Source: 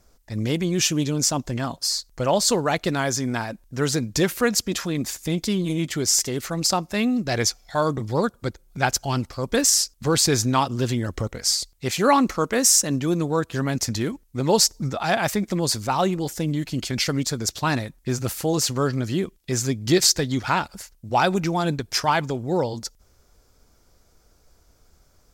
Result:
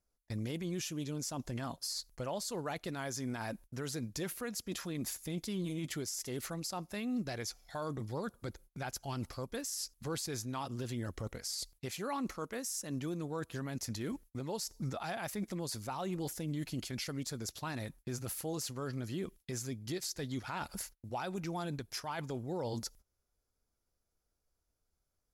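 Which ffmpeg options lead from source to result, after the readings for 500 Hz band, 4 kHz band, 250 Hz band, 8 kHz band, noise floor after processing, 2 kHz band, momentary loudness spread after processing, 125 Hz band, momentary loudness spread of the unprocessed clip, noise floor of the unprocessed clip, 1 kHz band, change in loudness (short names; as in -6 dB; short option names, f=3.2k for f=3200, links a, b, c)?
-17.0 dB, -18.0 dB, -15.0 dB, -19.0 dB, -84 dBFS, -17.0 dB, 4 LU, -14.5 dB, 9 LU, -60 dBFS, -18.0 dB, -17.0 dB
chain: -af "agate=range=-26dB:threshold=-45dB:ratio=16:detection=peak,equalizer=f=11k:w=5.9:g=13,areverse,acompressor=threshold=-29dB:ratio=12,areverse,alimiter=level_in=5dB:limit=-24dB:level=0:latency=1:release=261,volume=-5dB"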